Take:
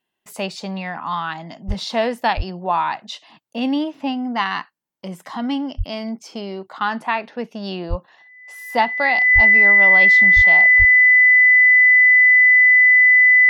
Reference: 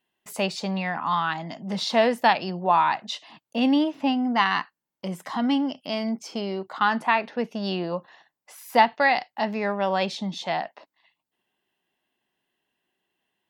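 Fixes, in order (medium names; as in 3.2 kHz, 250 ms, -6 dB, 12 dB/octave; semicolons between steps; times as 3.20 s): band-stop 2 kHz, Q 30; de-plosive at 1.67/2.36/5.77/7.89/9.34/10.35/10.78 s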